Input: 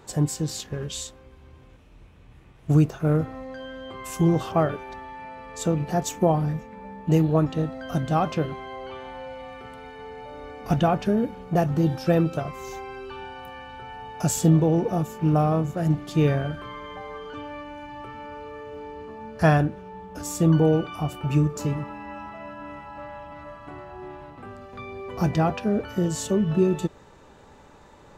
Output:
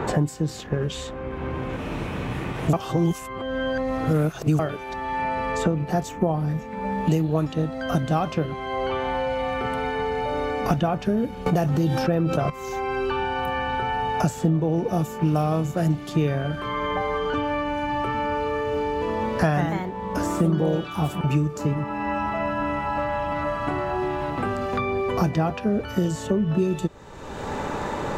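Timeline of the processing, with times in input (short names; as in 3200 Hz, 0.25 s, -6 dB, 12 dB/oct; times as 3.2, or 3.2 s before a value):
2.73–4.59 reverse
11.46–12.5 fast leveller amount 70%
18.81–21.27 echoes that change speed 0.205 s, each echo +2 st, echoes 2, each echo -6 dB
whole clip: three-band squash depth 100%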